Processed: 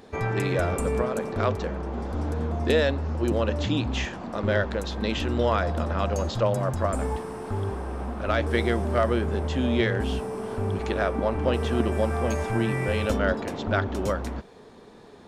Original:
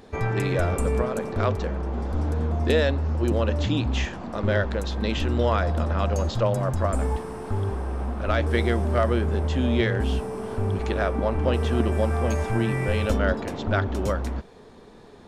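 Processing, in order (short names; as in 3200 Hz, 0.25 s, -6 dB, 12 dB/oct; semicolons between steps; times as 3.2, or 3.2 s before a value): low shelf 68 Hz -9.5 dB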